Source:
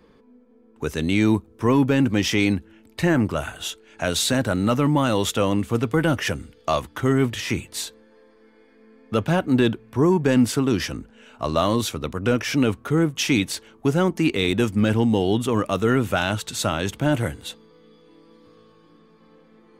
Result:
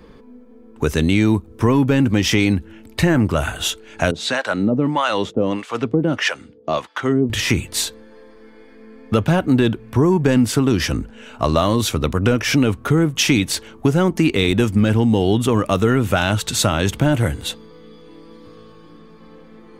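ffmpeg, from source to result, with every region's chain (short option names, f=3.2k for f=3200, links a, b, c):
-filter_complex "[0:a]asettb=1/sr,asplit=3[a][b][c];[a]atrim=end=4.114[d];[b]atrim=start=4.11:end=7.3,asetpts=PTS-STARTPTS,afade=t=in:d=0.004:c=qsin,afade=t=out:st=3.186:d=0.004:c=qsin,highpass=190,lowpass=5.3k,acrossover=split=590[e][f];[e]aeval=exprs='val(0)*(1-1/2+1/2*cos(2*PI*1.6*n/s))':c=same[g];[f]aeval=exprs='val(0)*(1-1/2-1/2*cos(2*PI*1.6*n/s))':c=same[h];[g][h]amix=inputs=2:normalize=0[i];[c]atrim=start=7.296[j];[d][i]acrossfade=d=0.004:c1=hsin:c2=qsin[k];[k][j]acrossfade=d=0.004:c1=qsin:c2=hsin,lowshelf=f=94:g=8,acompressor=threshold=-22dB:ratio=3,volume=8.5dB"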